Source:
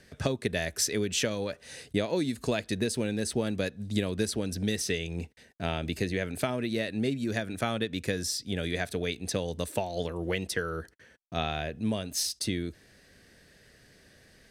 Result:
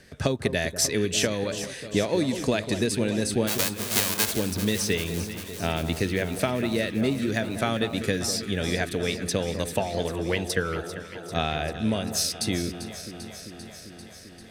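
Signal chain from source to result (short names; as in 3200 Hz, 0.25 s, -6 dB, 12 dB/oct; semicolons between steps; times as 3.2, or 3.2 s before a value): 3.47–4.31 spectral whitening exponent 0.1; echo with dull and thin repeats by turns 0.197 s, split 1400 Hz, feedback 85%, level -10.5 dB; gain +4 dB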